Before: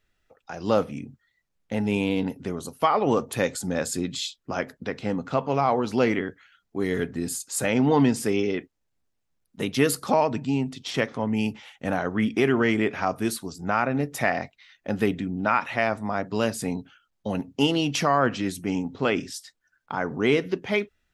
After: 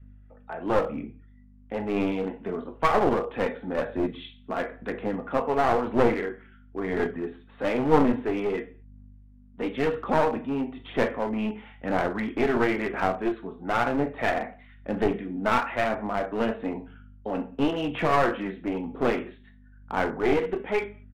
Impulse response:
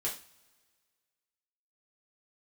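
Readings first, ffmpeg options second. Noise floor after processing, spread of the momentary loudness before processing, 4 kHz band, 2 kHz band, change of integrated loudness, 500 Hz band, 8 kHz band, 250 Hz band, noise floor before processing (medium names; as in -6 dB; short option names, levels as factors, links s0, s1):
-53 dBFS, 11 LU, -8.0 dB, -2.0 dB, -1.5 dB, 0.0 dB, under -15 dB, -2.5 dB, -76 dBFS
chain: -filter_complex "[0:a]acrossover=split=210 2200:gain=0.178 1 0.126[s0][s1][s2];[s0][s1][s2]amix=inputs=3:normalize=0,aeval=exprs='val(0)+0.00316*(sin(2*PI*50*n/s)+sin(2*PI*2*50*n/s)/2+sin(2*PI*3*50*n/s)/3+sin(2*PI*4*50*n/s)/4+sin(2*PI*5*50*n/s)/5)':c=same,aphaser=in_gain=1:out_gain=1:delay=4.6:decay=0.42:speed=1:type=sinusoidal,asplit=2[s3][s4];[1:a]atrim=start_sample=2205,afade=t=out:st=0.28:d=0.01,atrim=end_sample=12789,adelay=17[s5];[s4][s5]afir=irnorm=-1:irlink=0,volume=0.376[s6];[s3][s6]amix=inputs=2:normalize=0,aresample=8000,aresample=44100,adynamicequalizer=threshold=0.0251:dfrequency=300:dqfactor=3.3:tfrequency=300:tqfactor=3.3:attack=5:release=100:ratio=0.375:range=1.5:mode=cutabove:tftype=bell,aeval=exprs='clip(val(0),-1,0.0531)':c=same"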